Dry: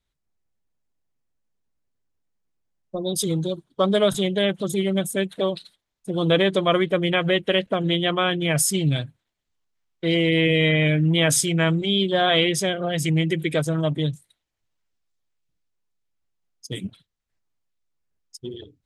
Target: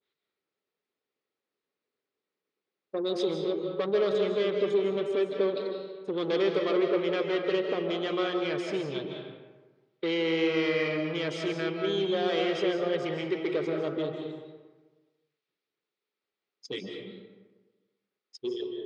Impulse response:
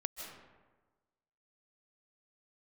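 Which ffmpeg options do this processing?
-filter_complex "[0:a]asplit=2[link_01][link_02];[link_02]acompressor=threshold=-28dB:ratio=6,volume=1.5dB[link_03];[link_01][link_03]amix=inputs=2:normalize=0,asoftclip=type=tanh:threshold=-19dB,highpass=400,equalizer=frequency=410:width_type=q:width=4:gain=8,equalizer=frequency=670:width_type=q:width=4:gain=-8,equalizer=frequency=950:width_type=q:width=4:gain=-6,equalizer=frequency=1600:width_type=q:width=4:gain=-4,equalizer=frequency=3000:width_type=q:width=4:gain=-3,lowpass=frequency=4300:width=0.5412,lowpass=frequency=4300:width=1.3066[link_04];[1:a]atrim=start_sample=2205[link_05];[link_04][link_05]afir=irnorm=-1:irlink=0,adynamicequalizer=threshold=0.00708:dfrequency=1500:dqfactor=0.7:tfrequency=1500:tqfactor=0.7:attack=5:release=100:ratio=0.375:range=3:mode=cutabove:tftype=highshelf,volume=-1dB"

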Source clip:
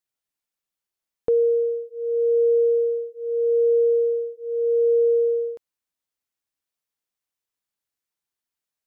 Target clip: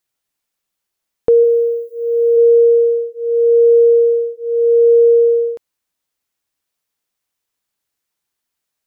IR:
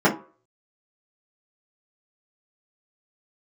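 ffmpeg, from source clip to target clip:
-filter_complex "[0:a]asplit=3[link_01][link_02][link_03];[link_01]afade=type=out:start_time=1.43:duration=0.02[link_04];[link_02]aemphasis=mode=production:type=bsi,afade=type=in:start_time=1.43:duration=0.02,afade=type=out:start_time=2.36:duration=0.02[link_05];[link_03]afade=type=in:start_time=2.36:duration=0.02[link_06];[link_04][link_05][link_06]amix=inputs=3:normalize=0,volume=9dB"

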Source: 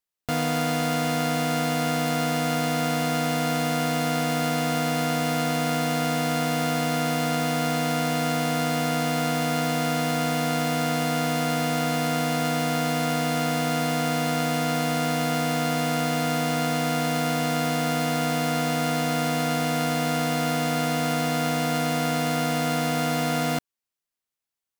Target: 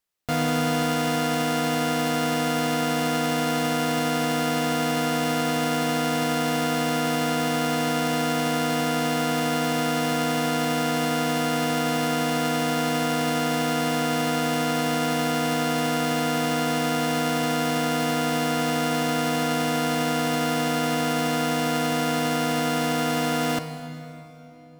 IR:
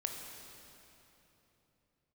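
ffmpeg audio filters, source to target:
-filter_complex "[0:a]alimiter=limit=-21.5dB:level=0:latency=1:release=38,asplit=2[link_01][link_02];[1:a]atrim=start_sample=2205,highshelf=frequency=7700:gain=-6[link_03];[link_02][link_03]afir=irnorm=-1:irlink=0,volume=0.5dB[link_04];[link_01][link_04]amix=inputs=2:normalize=0"

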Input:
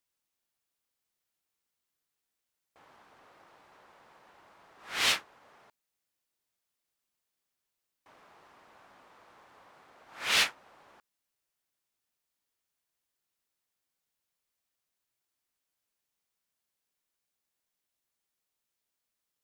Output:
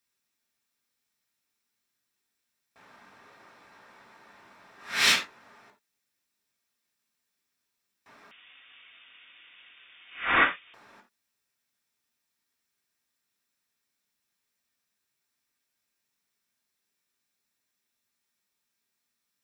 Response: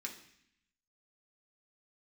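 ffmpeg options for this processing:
-filter_complex "[1:a]atrim=start_sample=2205,afade=type=out:start_time=0.14:duration=0.01,atrim=end_sample=6615[link_01];[0:a][link_01]afir=irnorm=-1:irlink=0,asettb=1/sr,asplit=3[link_02][link_03][link_04];[link_02]atrim=end=8.314[link_05];[link_03]atrim=start=8.31:end=10.74,asetpts=PTS-STARTPTS,afade=type=in:duration=0.004:curve=qsin,afade=type=out:start_time=2.426:duration=0.004:curve=qsin,lowpass=frequency=3200:width_type=q:width=0.5098,lowpass=frequency=3200:width_type=q:width=0.6013,lowpass=frequency=3200:width_type=q:width=0.9,lowpass=frequency=3200:width_type=q:width=2.563,afreqshift=-3800[link_06];[link_04]atrim=start=10.736[link_07];[link_05][link_06]acrossfade=duration=0.004:curve1=hsin:curve2=qsin[link_08];[link_08][link_07]acrossfade=duration=0.004:curve1=qsin:curve2=hsin,volume=7dB"

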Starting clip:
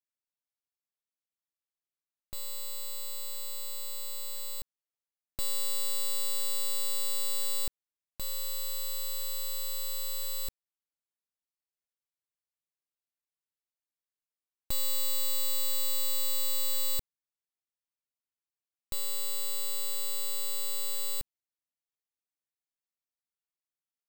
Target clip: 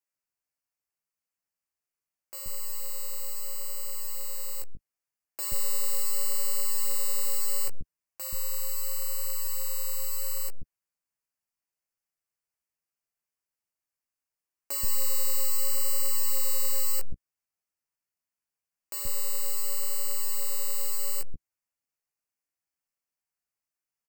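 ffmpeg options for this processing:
ffmpeg -i in.wav -filter_complex "[0:a]asuperstop=centerf=3600:order=4:qfactor=2.3,acrossover=split=330[link_01][link_02];[link_01]adelay=130[link_03];[link_03][link_02]amix=inputs=2:normalize=0,flanger=delay=9.9:depth=9.4:regen=-6:speed=0.74:shape=sinusoidal,volume=7dB" out.wav

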